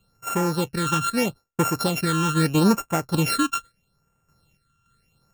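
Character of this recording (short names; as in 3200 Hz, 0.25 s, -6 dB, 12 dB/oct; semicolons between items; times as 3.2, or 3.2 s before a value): a buzz of ramps at a fixed pitch in blocks of 32 samples; phasing stages 8, 0.78 Hz, lowest notch 620–4300 Hz; random-step tremolo 3.5 Hz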